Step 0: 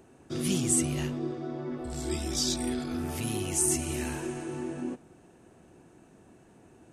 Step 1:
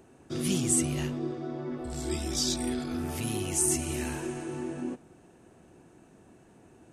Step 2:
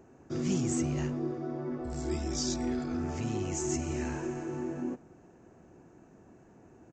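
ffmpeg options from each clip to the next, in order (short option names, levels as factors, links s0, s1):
-af anull
-af "equalizer=f=3500:t=o:w=0.96:g=-11.5,asoftclip=type=tanh:threshold=0.119,aresample=16000,aresample=44100"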